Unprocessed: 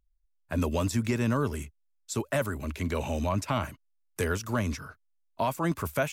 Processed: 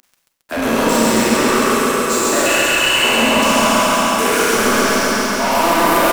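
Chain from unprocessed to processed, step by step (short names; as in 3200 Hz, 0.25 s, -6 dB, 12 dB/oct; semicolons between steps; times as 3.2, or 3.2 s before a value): spectral trails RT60 2.28 s; upward compressor, threshold -41 dBFS; steep high-pass 210 Hz 72 dB/oct; 2.46–3.04 inverted band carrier 3200 Hz; sample leveller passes 5; echo 0.142 s -10 dB; Schroeder reverb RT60 1.1 s, combs from 31 ms, DRR -0.5 dB; lo-fi delay 0.136 s, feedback 80%, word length 9-bit, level -4 dB; gain -4.5 dB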